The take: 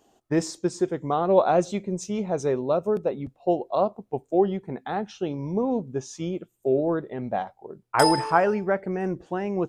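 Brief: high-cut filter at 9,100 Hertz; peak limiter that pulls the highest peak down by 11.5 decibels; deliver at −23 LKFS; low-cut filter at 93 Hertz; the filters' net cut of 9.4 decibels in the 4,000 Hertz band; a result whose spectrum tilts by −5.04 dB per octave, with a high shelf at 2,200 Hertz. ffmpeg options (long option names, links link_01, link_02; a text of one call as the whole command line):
ffmpeg -i in.wav -af "highpass=93,lowpass=9100,highshelf=frequency=2200:gain=-4,equalizer=frequency=4000:width_type=o:gain=-8.5,volume=6dB,alimiter=limit=-10.5dB:level=0:latency=1" out.wav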